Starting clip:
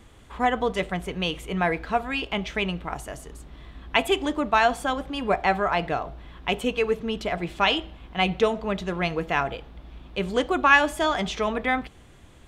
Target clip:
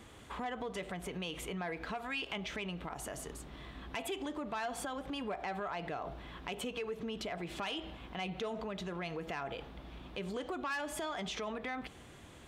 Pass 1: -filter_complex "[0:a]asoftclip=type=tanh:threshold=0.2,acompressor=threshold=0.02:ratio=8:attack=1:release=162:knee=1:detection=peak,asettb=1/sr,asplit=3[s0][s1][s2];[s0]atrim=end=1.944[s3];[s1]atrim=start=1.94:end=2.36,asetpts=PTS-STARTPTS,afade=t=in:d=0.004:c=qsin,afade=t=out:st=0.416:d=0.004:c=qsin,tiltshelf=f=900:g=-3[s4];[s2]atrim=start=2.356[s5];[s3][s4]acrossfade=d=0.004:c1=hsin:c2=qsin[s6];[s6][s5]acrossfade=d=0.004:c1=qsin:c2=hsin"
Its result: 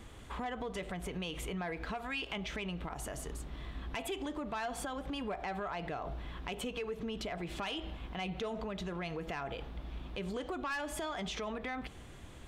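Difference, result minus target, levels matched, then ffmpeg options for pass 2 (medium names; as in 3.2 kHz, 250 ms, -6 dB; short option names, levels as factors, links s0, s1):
125 Hz band +2.5 dB
-filter_complex "[0:a]asoftclip=type=tanh:threshold=0.2,acompressor=threshold=0.02:ratio=8:attack=1:release=162:knee=1:detection=peak,highpass=f=130:p=1,asettb=1/sr,asplit=3[s0][s1][s2];[s0]atrim=end=1.944[s3];[s1]atrim=start=1.94:end=2.36,asetpts=PTS-STARTPTS,afade=t=in:d=0.004:c=qsin,afade=t=out:st=0.416:d=0.004:c=qsin,tiltshelf=f=900:g=-3[s4];[s2]atrim=start=2.356[s5];[s3][s4]acrossfade=d=0.004:c1=hsin:c2=qsin[s6];[s6][s5]acrossfade=d=0.004:c1=qsin:c2=hsin"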